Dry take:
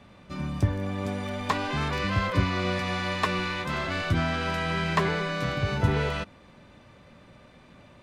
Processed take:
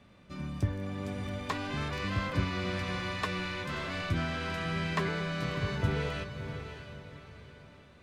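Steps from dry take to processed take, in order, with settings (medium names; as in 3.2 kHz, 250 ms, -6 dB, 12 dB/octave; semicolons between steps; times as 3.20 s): peaking EQ 860 Hz -4 dB 0.78 oct; on a send: echo that smears into a reverb 620 ms, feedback 41%, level -9 dB; on the sum: trim -6 dB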